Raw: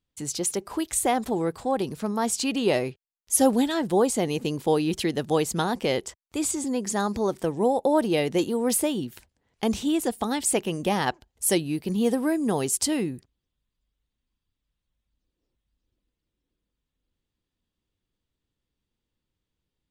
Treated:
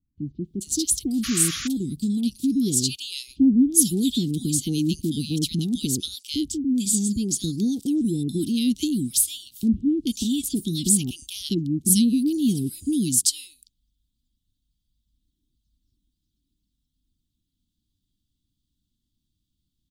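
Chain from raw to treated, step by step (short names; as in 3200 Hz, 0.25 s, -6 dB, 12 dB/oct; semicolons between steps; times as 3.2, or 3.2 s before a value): elliptic band-stop 280–3500 Hz, stop band 40 dB; bands offset in time lows, highs 0.44 s, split 1100 Hz; painted sound noise, 1.23–1.68, 1100–7200 Hz -39 dBFS; gain +6.5 dB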